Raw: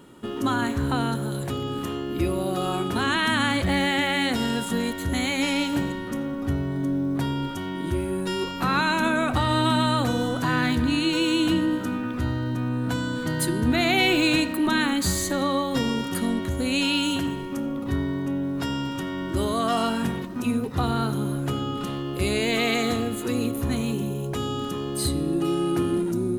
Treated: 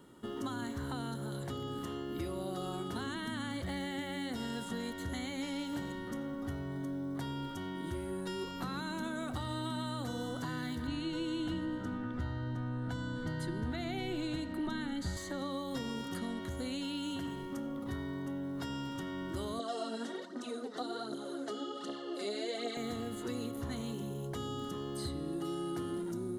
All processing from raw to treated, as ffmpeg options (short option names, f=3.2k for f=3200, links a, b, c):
-filter_complex "[0:a]asettb=1/sr,asplit=3[a][b][c];[a]atrim=end=10.874[d];[b]atrim=start=10.87:end=15.17,asetpts=PTS-STARTPTS,afade=t=in:d=0.004:c=qsin,afade=t=out:st=4.296:d=0.004:c=qsin,asuperstop=centerf=1100:order=4:qfactor=7.4,aemphasis=mode=reproduction:type=bsi[e];[c]atrim=start=15.166[f];[d][e]acrossfade=d=0.004:c1=hsin:c2=qsin[g];[g][f]acrossfade=d=0.004:c1=qsin:c2=hsin,asettb=1/sr,asplit=3[h][i][j];[h]atrim=end=19.594[k];[i]atrim=start=19.59:end=22.77,asetpts=PTS-STARTPTS,afade=t=in:d=0.004:c=qsin,afade=t=out:st=3.176:d=0.004:c=qsin,aphaser=in_gain=1:out_gain=1:delay=4.9:decay=0.59:speed=1.3:type=triangular,highpass=f=300:w=0.5412,highpass=f=300:w=1.3066,equalizer=f=640:t=q:w=4:g=4,equalizer=f=990:t=q:w=4:g=-7,equalizer=f=2.4k:t=q:w=4:g=-6,equalizer=f=4.2k:t=q:w=4:g=5,lowpass=f=8.8k:w=0.5412,lowpass=f=8.8k:w=1.3066[l];[j]atrim=start=22.766[m];[k][l]acrossfade=d=0.004:c1=hsin:c2=qsin[n];[n][m]acrossfade=d=0.004:c1=qsin:c2=hsin,acrossover=split=520|3600|7600[o][p][q][r];[o]acompressor=threshold=-29dB:ratio=4[s];[p]acompressor=threshold=-35dB:ratio=4[t];[q]acompressor=threshold=-43dB:ratio=4[u];[r]acompressor=threshold=-51dB:ratio=4[v];[s][t][u][v]amix=inputs=4:normalize=0,bandreject=f=2.5k:w=5.1,volume=-8.5dB"